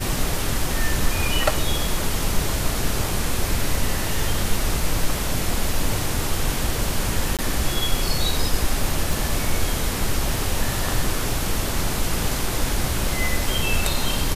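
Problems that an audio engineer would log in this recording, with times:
7.37–7.39 s: dropout 17 ms
9.13 s: pop

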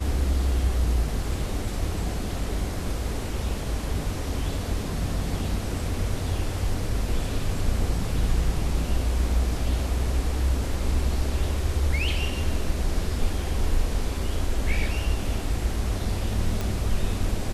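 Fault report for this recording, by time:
16.61 s: pop

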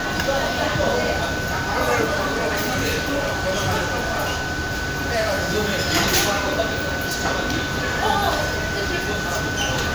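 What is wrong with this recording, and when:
whine 1.5 kHz -27 dBFS
2.04–5.37 s: clipped -17.5 dBFS

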